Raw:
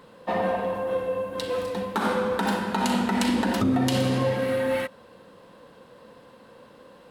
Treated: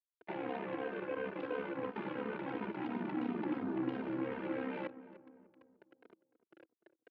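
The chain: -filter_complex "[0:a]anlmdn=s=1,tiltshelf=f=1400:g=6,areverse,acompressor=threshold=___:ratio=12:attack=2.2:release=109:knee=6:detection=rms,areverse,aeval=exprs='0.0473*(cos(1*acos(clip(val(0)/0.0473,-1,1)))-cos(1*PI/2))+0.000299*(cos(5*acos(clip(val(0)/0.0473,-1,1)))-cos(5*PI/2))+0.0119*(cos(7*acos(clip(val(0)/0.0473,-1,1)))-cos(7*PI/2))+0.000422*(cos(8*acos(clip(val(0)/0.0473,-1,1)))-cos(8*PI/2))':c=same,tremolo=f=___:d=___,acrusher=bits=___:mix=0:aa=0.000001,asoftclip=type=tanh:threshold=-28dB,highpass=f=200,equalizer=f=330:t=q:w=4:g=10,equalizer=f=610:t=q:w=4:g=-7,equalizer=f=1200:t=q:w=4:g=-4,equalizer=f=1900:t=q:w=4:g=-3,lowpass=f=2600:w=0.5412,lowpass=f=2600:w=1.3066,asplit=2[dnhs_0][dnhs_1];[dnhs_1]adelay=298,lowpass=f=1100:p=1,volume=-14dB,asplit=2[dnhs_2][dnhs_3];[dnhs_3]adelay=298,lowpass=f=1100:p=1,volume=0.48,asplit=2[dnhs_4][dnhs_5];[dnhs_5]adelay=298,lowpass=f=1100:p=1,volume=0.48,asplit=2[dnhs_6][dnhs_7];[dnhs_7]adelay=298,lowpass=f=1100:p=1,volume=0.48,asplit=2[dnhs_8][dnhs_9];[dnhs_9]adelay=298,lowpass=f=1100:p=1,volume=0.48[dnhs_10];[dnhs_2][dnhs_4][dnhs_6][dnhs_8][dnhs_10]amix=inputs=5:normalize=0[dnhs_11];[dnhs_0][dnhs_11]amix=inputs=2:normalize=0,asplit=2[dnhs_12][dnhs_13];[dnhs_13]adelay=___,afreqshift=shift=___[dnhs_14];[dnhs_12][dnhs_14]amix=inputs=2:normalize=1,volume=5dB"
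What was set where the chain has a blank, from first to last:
-32dB, 68, 0.974, 8, 3, -2.9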